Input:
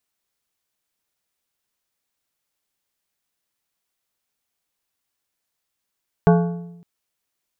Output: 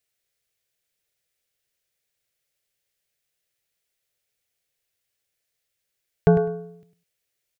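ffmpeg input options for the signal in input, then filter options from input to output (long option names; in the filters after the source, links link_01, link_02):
-f lavfi -i "aevalsrc='0.335*pow(10,-3*t/0.95)*sin(2*PI*172*t)+0.211*pow(10,-3*t/0.722)*sin(2*PI*430*t)+0.133*pow(10,-3*t/0.627)*sin(2*PI*688*t)+0.0841*pow(10,-3*t/0.586)*sin(2*PI*860*t)+0.0531*pow(10,-3*t/0.542)*sin(2*PI*1118*t)+0.0335*pow(10,-3*t/0.5)*sin(2*PI*1462*t)+0.0211*pow(10,-3*t/0.491)*sin(2*PI*1548*t)':duration=0.56:sample_rate=44100"
-filter_complex "[0:a]equalizer=frequency=125:width_type=o:width=1:gain=4,equalizer=frequency=250:width_type=o:width=1:gain=-10,equalizer=frequency=500:width_type=o:width=1:gain=7,equalizer=frequency=1000:width_type=o:width=1:gain=-12,equalizer=frequency=2000:width_type=o:width=1:gain=4,asplit=2[link_01][link_02];[link_02]aecho=0:1:102|204:0.282|0.0451[link_03];[link_01][link_03]amix=inputs=2:normalize=0"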